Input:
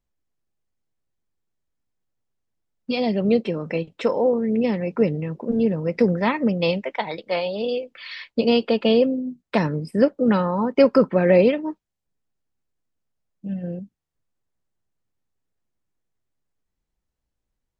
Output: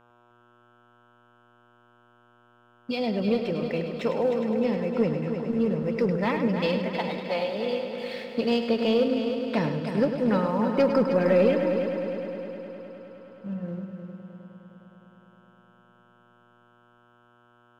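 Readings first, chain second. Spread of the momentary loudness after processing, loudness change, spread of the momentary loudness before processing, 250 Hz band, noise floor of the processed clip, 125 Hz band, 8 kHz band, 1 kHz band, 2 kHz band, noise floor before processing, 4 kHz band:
16 LU, −4.5 dB, 13 LU, −4.0 dB, −60 dBFS, −4.0 dB, can't be measured, −3.5 dB, −4.0 dB, −82 dBFS, −4.5 dB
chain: hum with harmonics 120 Hz, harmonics 13, −51 dBFS −1 dB per octave
leveller curve on the samples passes 1
echo machine with several playback heads 103 ms, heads first and third, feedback 71%, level −9 dB
level −9 dB

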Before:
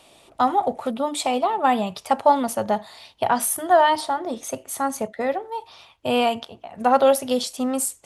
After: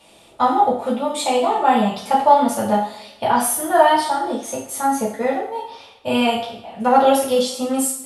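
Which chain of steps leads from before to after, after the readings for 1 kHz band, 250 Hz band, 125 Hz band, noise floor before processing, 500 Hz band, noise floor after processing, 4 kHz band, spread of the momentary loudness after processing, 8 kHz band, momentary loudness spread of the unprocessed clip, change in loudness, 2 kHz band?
+4.0 dB, +5.0 dB, +6.0 dB, −53 dBFS, +3.0 dB, −49 dBFS, +3.5 dB, 12 LU, +3.5 dB, 12 LU, +3.5 dB, +3.0 dB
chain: coupled-rooms reverb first 0.51 s, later 1.5 s, DRR −6.5 dB
level −4 dB

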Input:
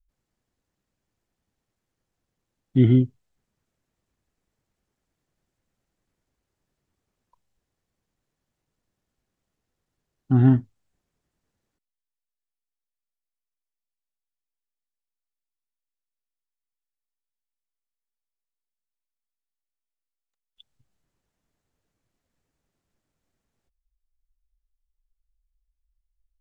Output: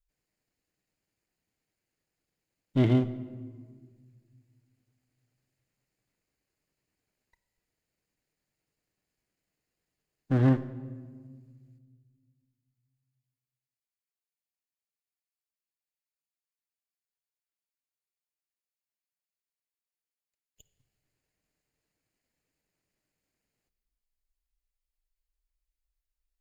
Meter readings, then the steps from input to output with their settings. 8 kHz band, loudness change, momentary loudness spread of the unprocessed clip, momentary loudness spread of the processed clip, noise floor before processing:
can't be measured, −7.0 dB, 8 LU, 20 LU, below −85 dBFS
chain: lower of the sound and its delayed copy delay 0.44 ms
low-shelf EQ 290 Hz −9.5 dB
rectangular room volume 2,200 cubic metres, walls mixed, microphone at 0.49 metres

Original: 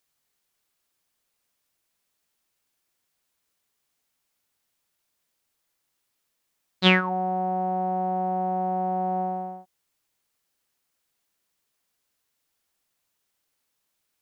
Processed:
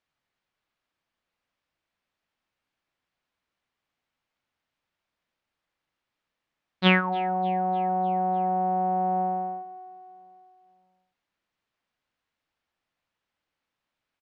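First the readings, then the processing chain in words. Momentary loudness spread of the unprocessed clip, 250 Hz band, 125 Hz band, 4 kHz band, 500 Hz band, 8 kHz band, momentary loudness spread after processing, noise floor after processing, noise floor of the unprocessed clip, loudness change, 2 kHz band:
11 LU, −0.5 dB, −0.5 dB, −4.0 dB, −0.5 dB, can't be measured, 12 LU, below −85 dBFS, −78 dBFS, 0.0 dB, −1.0 dB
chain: low-pass filter 2,900 Hz 12 dB per octave
parametric band 410 Hz −4.5 dB 0.32 octaves
repeating echo 300 ms, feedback 59%, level −19 dB

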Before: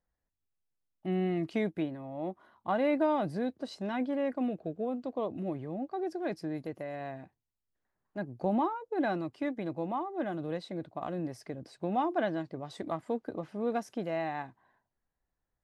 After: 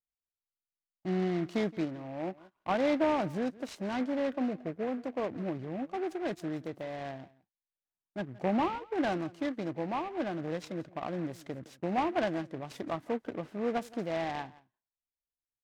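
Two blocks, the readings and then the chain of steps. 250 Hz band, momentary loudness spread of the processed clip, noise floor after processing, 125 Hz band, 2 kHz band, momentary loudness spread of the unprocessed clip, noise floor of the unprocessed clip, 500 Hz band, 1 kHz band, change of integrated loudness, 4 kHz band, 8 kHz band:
0.0 dB, 11 LU, below −85 dBFS, 0.0 dB, +1.5 dB, 11 LU, below −85 dBFS, 0.0 dB, 0.0 dB, 0.0 dB, +3.5 dB, can't be measured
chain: noise gate −54 dBFS, range −21 dB
on a send: single-tap delay 170 ms −21 dB
on the sum: short delay modulated by noise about 1,300 Hz, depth 0.049 ms

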